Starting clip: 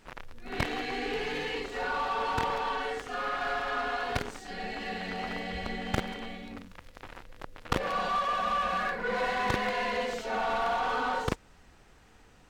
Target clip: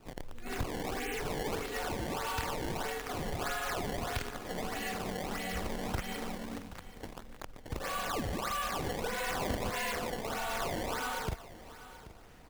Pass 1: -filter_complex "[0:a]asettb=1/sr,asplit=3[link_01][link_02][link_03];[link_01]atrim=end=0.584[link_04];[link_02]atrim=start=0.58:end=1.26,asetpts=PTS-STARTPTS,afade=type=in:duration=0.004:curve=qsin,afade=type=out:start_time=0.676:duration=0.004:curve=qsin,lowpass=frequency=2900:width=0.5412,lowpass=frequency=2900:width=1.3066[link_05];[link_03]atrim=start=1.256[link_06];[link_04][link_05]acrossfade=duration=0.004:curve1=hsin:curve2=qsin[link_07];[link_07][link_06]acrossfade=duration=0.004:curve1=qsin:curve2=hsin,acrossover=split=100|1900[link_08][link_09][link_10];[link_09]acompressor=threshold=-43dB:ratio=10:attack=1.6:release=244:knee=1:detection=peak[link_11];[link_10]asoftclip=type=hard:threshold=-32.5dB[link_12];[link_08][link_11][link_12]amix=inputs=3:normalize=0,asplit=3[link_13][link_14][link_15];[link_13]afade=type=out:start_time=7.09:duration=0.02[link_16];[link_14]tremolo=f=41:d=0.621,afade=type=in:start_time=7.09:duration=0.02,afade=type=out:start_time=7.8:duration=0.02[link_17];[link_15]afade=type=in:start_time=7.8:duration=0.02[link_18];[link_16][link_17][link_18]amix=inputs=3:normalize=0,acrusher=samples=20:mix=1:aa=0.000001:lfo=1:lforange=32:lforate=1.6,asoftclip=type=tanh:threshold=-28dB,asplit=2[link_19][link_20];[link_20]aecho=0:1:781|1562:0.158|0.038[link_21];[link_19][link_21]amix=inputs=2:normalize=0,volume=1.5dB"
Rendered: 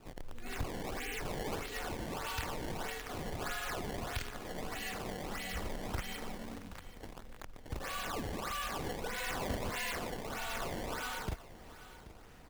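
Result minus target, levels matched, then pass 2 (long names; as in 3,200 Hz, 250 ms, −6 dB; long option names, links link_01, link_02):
downward compressor: peak gain reduction +7 dB; soft clipping: distortion +11 dB
-filter_complex "[0:a]asettb=1/sr,asplit=3[link_01][link_02][link_03];[link_01]atrim=end=0.584[link_04];[link_02]atrim=start=0.58:end=1.26,asetpts=PTS-STARTPTS,afade=type=in:duration=0.004:curve=qsin,afade=type=out:start_time=0.676:duration=0.004:curve=qsin,lowpass=frequency=2900:width=0.5412,lowpass=frequency=2900:width=1.3066[link_05];[link_03]atrim=start=1.256[link_06];[link_04][link_05]acrossfade=duration=0.004:curve1=hsin:curve2=qsin[link_07];[link_07][link_06]acrossfade=duration=0.004:curve1=qsin:curve2=hsin,acrossover=split=100|1900[link_08][link_09][link_10];[link_09]acompressor=threshold=-35dB:ratio=10:attack=1.6:release=244:knee=1:detection=peak[link_11];[link_10]asoftclip=type=hard:threshold=-32.5dB[link_12];[link_08][link_11][link_12]amix=inputs=3:normalize=0,asplit=3[link_13][link_14][link_15];[link_13]afade=type=out:start_time=7.09:duration=0.02[link_16];[link_14]tremolo=f=41:d=0.621,afade=type=in:start_time=7.09:duration=0.02,afade=type=out:start_time=7.8:duration=0.02[link_17];[link_15]afade=type=in:start_time=7.8:duration=0.02[link_18];[link_16][link_17][link_18]amix=inputs=3:normalize=0,acrusher=samples=20:mix=1:aa=0.000001:lfo=1:lforange=32:lforate=1.6,asoftclip=type=tanh:threshold=-20.5dB,asplit=2[link_19][link_20];[link_20]aecho=0:1:781|1562:0.158|0.038[link_21];[link_19][link_21]amix=inputs=2:normalize=0,volume=1.5dB"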